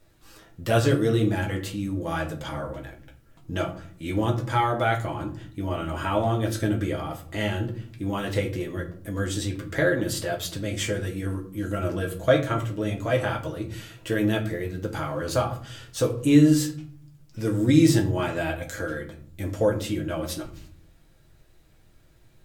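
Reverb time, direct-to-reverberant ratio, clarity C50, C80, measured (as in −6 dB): 0.50 s, 0.0 dB, 11.0 dB, 15.0 dB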